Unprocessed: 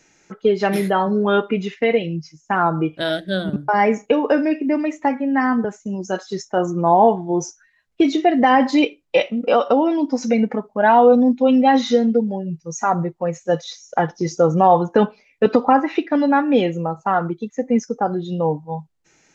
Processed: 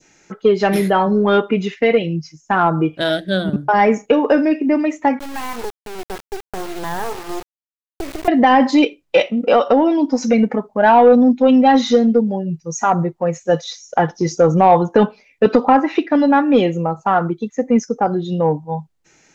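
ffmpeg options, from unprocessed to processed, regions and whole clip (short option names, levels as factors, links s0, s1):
-filter_complex "[0:a]asettb=1/sr,asplit=3[s0][s1][s2];[s0]atrim=end=5.194[s3];[s1]atrim=start=5.19:end=8.28,asetpts=PTS-STARTPTS,afade=t=in:d=0.004:c=qsin,afade=t=out:st=3.086:d=0.004:c=qsin,highpass=f=370:w=0.5412,highpass=f=370:w=1.3066,equalizer=f=410:t=q:w=4:g=8,equalizer=f=600:t=q:w=4:g=-9,equalizer=f=950:t=q:w=4:g=6,equalizer=f=1500:t=q:w=4:g=-5,lowpass=f=2000:w=0.5412,lowpass=f=2000:w=1.3066,acompressor=threshold=0.0794:ratio=5:attack=3.2:release=140:knee=1:detection=peak,acrusher=bits=3:dc=4:mix=0:aa=0.000001[s4];[s2]atrim=start=8.276[s5];[s3][s4]acrossfade=d=0.004:c1=hsin:c2=qsin[s6];[s6][s5]acrossfade=d=0.004:c1=qsin:c2=hsin,adynamicequalizer=threshold=0.0447:dfrequency=1700:dqfactor=0.77:tfrequency=1700:tqfactor=0.77:attack=5:release=100:ratio=0.375:range=1.5:mode=cutabove:tftype=bell,acontrast=21,volume=0.891"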